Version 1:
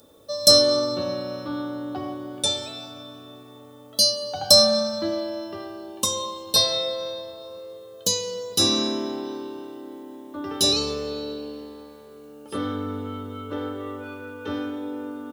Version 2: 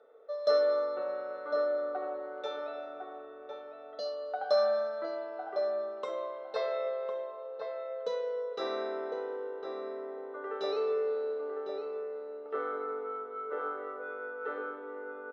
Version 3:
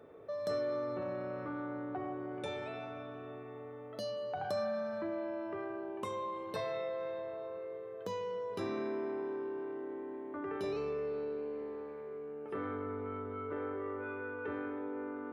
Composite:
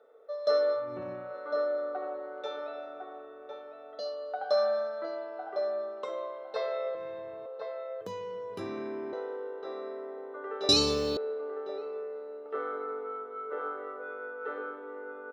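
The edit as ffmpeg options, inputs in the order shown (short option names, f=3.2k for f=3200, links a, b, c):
-filter_complex "[2:a]asplit=3[a][b][c];[1:a]asplit=5[d][e][f][g][h];[d]atrim=end=0.95[i];[a]atrim=start=0.71:end=1.36[j];[e]atrim=start=1.12:end=6.952[k];[b]atrim=start=6.948:end=7.462[l];[f]atrim=start=7.458:end=8.012[m];[c]atrim=start=8.008:end=9.132[n];[g]atrim=start=9.128:end=10.692[o];[0:a]atrim=start=10.688:end=11.172[p];[h]atrim=start=11.168[q];[i][j]acrossfade=d=0.24:c1=tri:c2=tri[r];[r][k]acrossfade=d=0.24:c1=tri:c2=tri[s];[s][l]acrossfade=d=0.004:c1=hsin:c2=hsin[t];[t][m]acrossfade=d=0.004:c1=hsin:c2=hsin[u];[u][n]acrossfade=d=0.004:c1=hsin:c2=hsin[v];[v][o]acrossfade=d=0.004:c1=hsin:c2=hsin[w];[w][p]acrossfade=d=0.004:c1=hsin:c2=hsin[x];[x][q]acrossfade=d=0.004:c1=hsin:c2=hsin"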